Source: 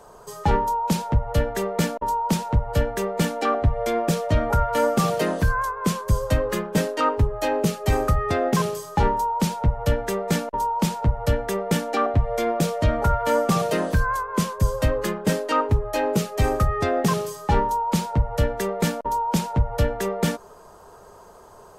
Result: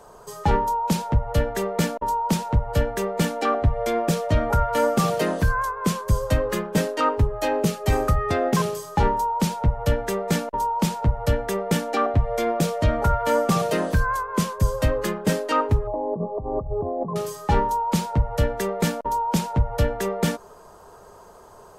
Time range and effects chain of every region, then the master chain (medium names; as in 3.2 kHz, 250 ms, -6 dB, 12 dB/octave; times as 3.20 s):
15.87–17.16 s: brick-wall FIR low-pass 1.2 kHz + compressor with a negative ratio -27 dBFS
whole clip: none